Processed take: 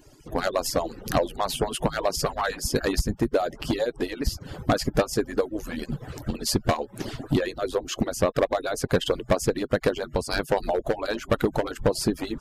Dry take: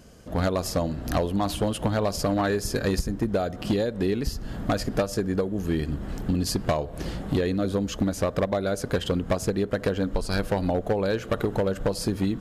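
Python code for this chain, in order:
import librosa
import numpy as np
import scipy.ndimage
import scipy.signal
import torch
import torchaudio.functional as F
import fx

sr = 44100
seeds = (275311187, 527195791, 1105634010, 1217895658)

y = fx.hpss_only(x, sr, part='percussive')
y = y * 10.0 ** (3.5 / 20.0)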